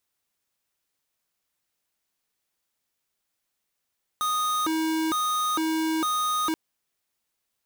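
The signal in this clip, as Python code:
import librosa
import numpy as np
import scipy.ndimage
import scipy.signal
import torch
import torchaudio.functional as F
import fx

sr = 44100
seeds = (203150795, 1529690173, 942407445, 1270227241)

y = fx.siren(sr, length_s=2.33, kind='hi-lo', low_hz=319.0, high_hz=1240.0, per_s=1.1, wave='square', level_db=-25.5)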